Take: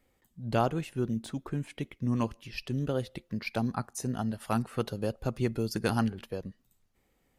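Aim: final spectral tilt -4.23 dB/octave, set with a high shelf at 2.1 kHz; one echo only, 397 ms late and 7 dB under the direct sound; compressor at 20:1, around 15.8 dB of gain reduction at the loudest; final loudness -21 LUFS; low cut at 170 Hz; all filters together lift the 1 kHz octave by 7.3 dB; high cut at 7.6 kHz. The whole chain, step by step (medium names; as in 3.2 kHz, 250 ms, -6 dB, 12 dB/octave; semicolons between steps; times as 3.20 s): high-pass 170 Hz; low-pass 7.6 kHz; peaking EQ 1 kHz +8 dB; treble shelf 2.1 kHz +8.5 dB; compression 20:1, threshold -32 dBFS; delay 397 ms -7 dB; trim +17 dB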